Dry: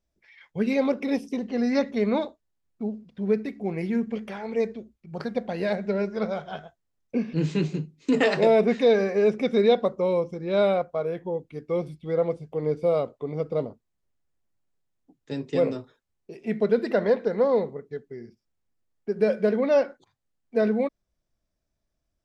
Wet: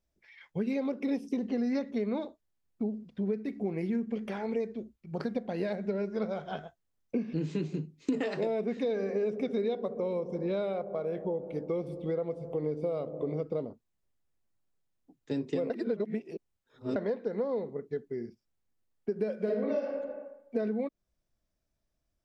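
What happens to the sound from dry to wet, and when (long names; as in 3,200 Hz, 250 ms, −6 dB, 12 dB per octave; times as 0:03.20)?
0:08.70–0:13.43: delay with a low-pass on its return 66 ms, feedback 81%, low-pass 650 Hz, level −14 dB
0:15.70–0:16.96: reverse
0:19.36–0:19.86: thrown reverb, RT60 0.81 s, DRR −4 dB
whole clip: downward compressor 6 to 1, threshold −31 dBFS; dynamic equaliser 300 Hz, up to +6 dB, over −46 dBFS, Q 0.85; level −2 dB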